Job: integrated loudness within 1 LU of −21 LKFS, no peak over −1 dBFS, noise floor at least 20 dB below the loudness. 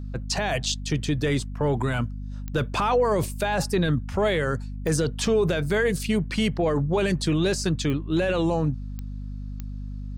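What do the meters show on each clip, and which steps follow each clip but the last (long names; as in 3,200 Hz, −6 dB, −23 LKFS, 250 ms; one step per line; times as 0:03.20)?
number of clicks 5; mains hum 50 Hz; hum harmonics up to 250 Hz; level of the hum −31 dBFS; integrated loudness −25.0 LKFS; sample peak −13.0 dBFS; target loudness −21.0 LKFS
→ click removal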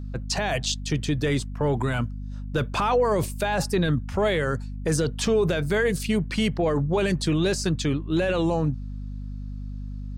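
number of clicks 0; mains hum 50 Hz; hum harmonics up to 250 Hz; level of the hum −31 dBFS
→ hum removal 50 Hz, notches 5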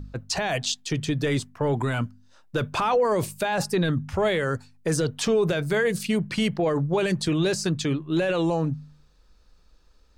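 mains hum none found; integrated loudness −25.5 LKFS; sample peak −14.0 dBFS; target loudness −21.0 LKFS
→ level +4.5 dB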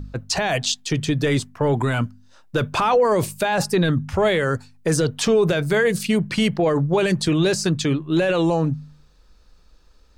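integrated loudness −21.0 LKFS; sample peak −9.5 dBFS; background noise floor −54 dBFS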